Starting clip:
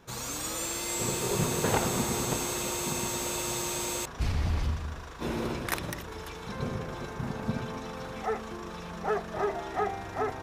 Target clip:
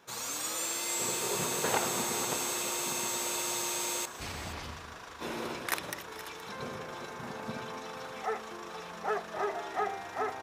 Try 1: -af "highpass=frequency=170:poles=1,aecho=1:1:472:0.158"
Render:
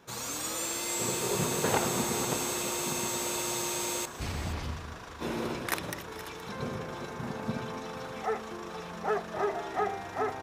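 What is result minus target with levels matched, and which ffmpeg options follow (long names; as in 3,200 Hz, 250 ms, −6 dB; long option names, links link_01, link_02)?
125 Hz band +7.5 dB
-af "highpass=frequency=570:poles=1,aecho=1:1:472:0.158"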